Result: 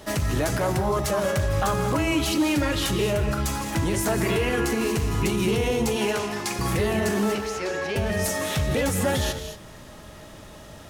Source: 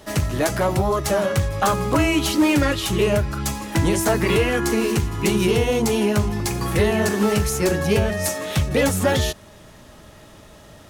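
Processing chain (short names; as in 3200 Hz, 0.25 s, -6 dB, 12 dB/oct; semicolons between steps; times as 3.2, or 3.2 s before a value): 5.96–6.59 weighting filter A; limiter -17.5 dBFS, peak gain reduction 7.5 dB; 7.35–7.96 three-band isolator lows -16 dB, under 390 Hz, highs -21 dB, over 5700 Hz; non-linear reverb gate 0.25 s rising, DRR 7.5 dB; gain +1 dB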